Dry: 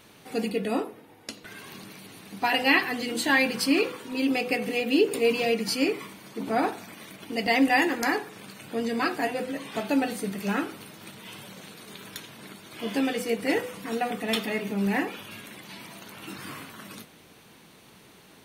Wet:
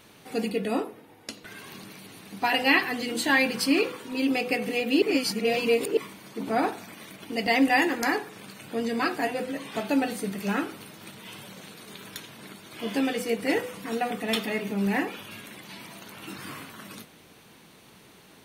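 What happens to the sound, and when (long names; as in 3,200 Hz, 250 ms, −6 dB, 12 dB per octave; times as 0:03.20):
0:05.02–0:05.97: reverse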